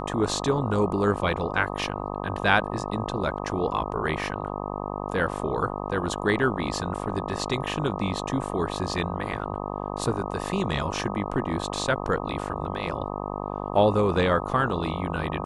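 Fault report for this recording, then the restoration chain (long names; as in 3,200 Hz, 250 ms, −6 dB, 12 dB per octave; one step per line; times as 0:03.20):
mains buzz 50 Hz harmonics 25 −32 dBFS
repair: hum removal 50 Hz, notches 25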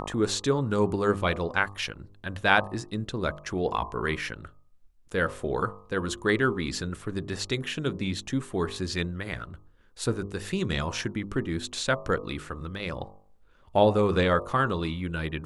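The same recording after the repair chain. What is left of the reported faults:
none of them is left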